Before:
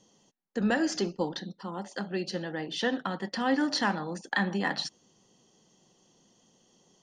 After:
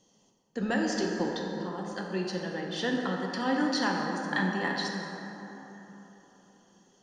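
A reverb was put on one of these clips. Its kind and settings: plate-style reverb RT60 3.8 s, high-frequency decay 0.4×, DRR 0 dB; gain -3 dB

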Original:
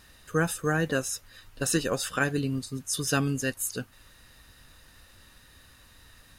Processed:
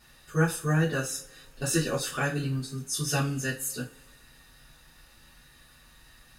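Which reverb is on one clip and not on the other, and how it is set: two-slope reverb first 0.28 s, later 1.9 s, from -28 dB, DRR -7.5 dB; gain -8.5 dB

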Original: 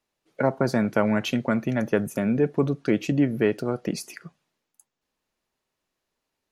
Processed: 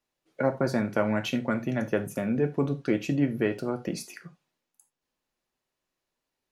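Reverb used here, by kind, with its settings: non-linear reverb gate 0.11 s falling, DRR 7 dB; gain -4 dB

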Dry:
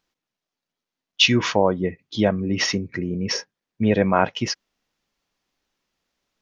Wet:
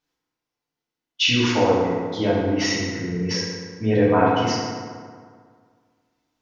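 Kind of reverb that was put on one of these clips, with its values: FDN reverb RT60 1.9 s, low-frequency decay 1×, high-frequency decay 0.55×, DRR -8.5 dB; gain -8.5 dB

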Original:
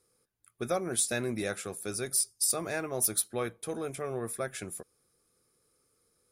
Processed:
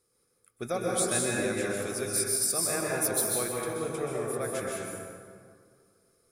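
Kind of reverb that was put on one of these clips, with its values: plate-style reverb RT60 2.1 s, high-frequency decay 0.55×, pre-delay 0.115 s, DRR -3.5 dB; gain -1.5 dB

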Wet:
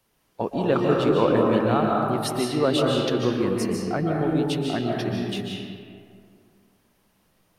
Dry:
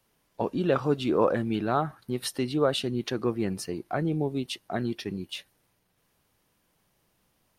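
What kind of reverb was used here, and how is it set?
digital reverb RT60 2.2 s, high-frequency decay 0.5×, pre-delay 0.105 s, DRR -1.5 dB; gain +1.5 dB

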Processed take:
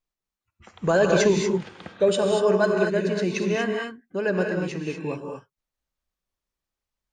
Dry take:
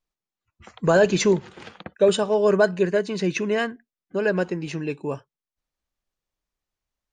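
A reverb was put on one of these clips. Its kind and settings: non-linear reverb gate 0.26 s rising, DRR 1.5 dB; gain -3 dB

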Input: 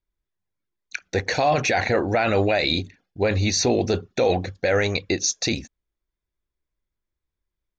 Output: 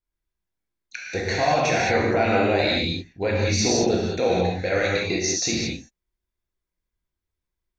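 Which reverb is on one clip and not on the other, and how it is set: non-linear reverb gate 0.24 s flat, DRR -4.5 dB; gain -5.5 dB

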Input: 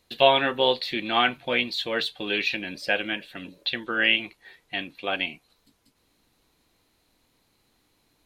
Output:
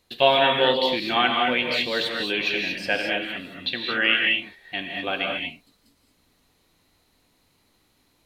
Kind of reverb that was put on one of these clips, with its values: non-linear reverb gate 0.25 s rising, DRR 0.5 dB

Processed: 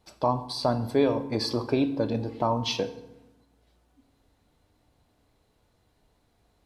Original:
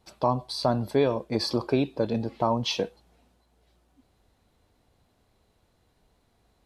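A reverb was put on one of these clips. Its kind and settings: FDN reverb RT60 0.94 s, low-frequency decay 1.5×, high-frequency decay 0.7×, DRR 10 dB; gain -1 dB

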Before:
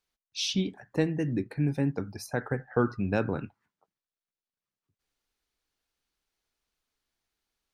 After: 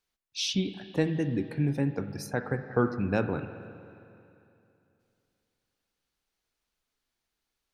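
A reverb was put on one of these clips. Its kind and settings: spring tank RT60 2.8 s, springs 45/49/55 ms, chirp 40 ms, DRR 10.5 dB

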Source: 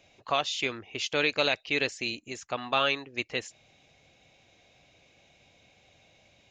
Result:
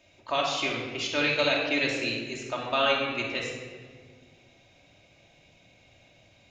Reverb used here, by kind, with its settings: shoebox room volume 2000 m³, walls mixed, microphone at 2.7 m; gain -2.5 dB

